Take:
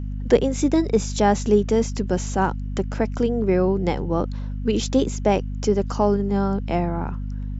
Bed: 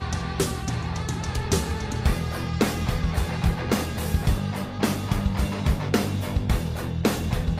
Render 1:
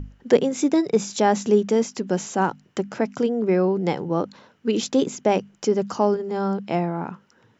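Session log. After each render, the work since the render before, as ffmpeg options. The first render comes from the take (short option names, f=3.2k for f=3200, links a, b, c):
-af "bandreject=f=50:t=h:w=6,bandreject=f=100:t=h:w=6,bandreject=f=150:t=h:w=6,bandreject=f=200:t=h:w=6,bandreject=f=250:t=h:w=6"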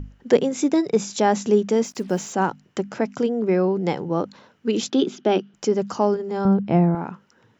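-filter_complex "[0:a]asettb=1/sr,asplit=3[a][b][c];[a]atrim=end=1.844[d];[b]atrim=start=1.84:end=2.33,asetpts=PTS-STARTPTS,afade=t=in:d=0.004:c=qsin,afade=t=out:st=0.486:d=0.004:c=qsin,acrusher=bits=7:mix=0:aa=0.5[e];[c]atrim=start=2.326[f];[d][e]acrossfade=d=0.004:c1=hsin:c2=qsin[g];[g][f]acrossfade=d=0.004:c1=qsin:c2=hsin,asettb=1/sr,asplit=3[h][i][j];[h]atrim=end=4.904[k];[i]atrim=start=4.9:end=5.54,asetpts=PTS-STARTPTS,afade=t=in:d=0.004:c=qsin,afade=t=out:st=0.636:d=0.004:c=qsin,highpass=f=170:w=0.5412,highpass=f=170:w=1.3066,equalizer=f=360:t=q:w=4:g=8,equalizer=f=510:t=q:w=4:g=-7,equalizer=f=1k:t=q:w=4:g=-6,equalizer=f=1.4k:t=q:w=4:g=4,equalizer=f=2.1k:t=q:w=4:g=-6,equalizer=f=3.3k:t=q:w=4:g=7,lowpass=f=5.1k:w=0.5412,lowpass=f=5.1k:w=1.3066[l];[j]atrim=start=5.536[m];[k][l]acrossfade=d=0.004:c1=hsin:c2=qsin[n];[n][m]acrossfade=d=0.004:c1=qsin:c2=hsin,asettb=1/sr,asplit=3[o][p][q];[o]atrim=end=6.454[r];[p]atrim=start=6.45:end=6.95,asetpts=PTS-STARTPTS,afade=t=in:d=0.004:c=qsin,afade=t=out:st=0.496:d=0.004:c=qsin,aemphasis=mode=reproduction:type=riaa[s];[q]atrim=start=6.946[t];[r][s]acrossfade=d=0.004:c1=hsin:c2=qsin[u];[u][t]acrossfade=d=0.004:c1=qsin:c2=hsin"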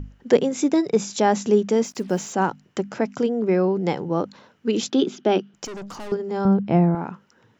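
-filter_complex "[0:a]asettb=1/sr,asplit=3[a][b][c];[a]atrim=end=5.654[d];[b]atrim=start=5.65:end=6.12,asetpts=PTS-STARTPTS,afade=t=in:d=0.004:c=qsin,afade=t=out:st=0.466:d=0.004:c=qsin,aeval=exprs='(tanh(44.7*val(0)+0.3)-tanh(0.3))/44.7':c=same[e];[c]atrim=start=6.116[f];[d][e]acrossfade=d=0.004:c1=hsin:c2=qsin[g];[g][f]acrossfade=d=0.004:c1=qsin:c2=hsin"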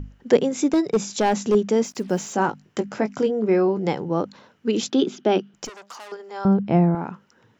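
-filter_complex "[0:a]asettb=1/sr,asplit=3[a][b][c];[a]atrim=end=0.734[d];[b]atrim=start=0.73:end=1.55,asetpts=PTS-STARTPTS,afade=t=in:d=0.004:c=qsin,afade=t=out:st=0.816:d=0.004:c=qsin,volume=13dB,asoftclip=hard,volume=-13dB[e];[c]atrim=start=1.546[f];[d][e]acrossfade=d=0.004:c1=hsin:c2=qsin[g];[g][f]acrossfade=d=0.004:c1=qsin:c2=hsin,asettb=1/sr,asplit=3[h][i][j];[h]atrim=end=2.304[k];[i]atrim=start=2.3:end=3.88,asetpts=PTS-STARTPTS,afade=t=in:d=0.004:c=qsin,afade=t=out:st=1.576:d=0.004:c=qsin,asplit=2[l][m];[m]adelay=19,volume=-8dB[n];[l][n]amix=inputs=2:normalize=0,atrim=end_sample=69678[o];[j]atrim=start=3.876[p];[k][o]acrossfade=d=0.004:c1=hsin:c2=qsin[q];[q][p]acrossfade=d=0.004:c1=qsin:c2=hsin,asettb=1/sr,asplit=3[r][s][t];[r]atrim=end=5.694[u];[s]atrim=start=5.69:end=6.45,asetpts=PTS-STARTPTS,afade=t=in:d=0.004:c=qsin,afade=t=out:st=0.756:d=0.004:c=qsin,highpass=750[v];[t]atrim=start=6.446[w];[u][v]acrossfade=d=0.004:c1=hsin:c2=qsin[x];[x][w]acrossfade=d=0.004:c1=qsin:c2=hsin"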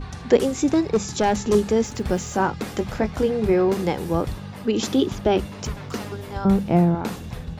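-filter_complex "[1:a]volume=-8dB[a];[0:a][a]amix=inputs=2:normalize=0"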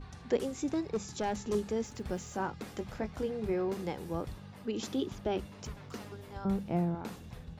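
-af "volume=-13.5dB"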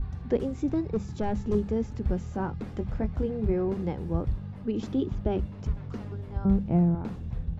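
-af "aemphasis=mode=reproduction:type=riaa"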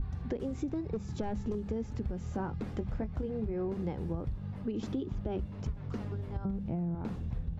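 -af "alimiter=limit=-20dB:level=0:latency=1:release=151,acompressor=threshold=-31dB:ratio=6"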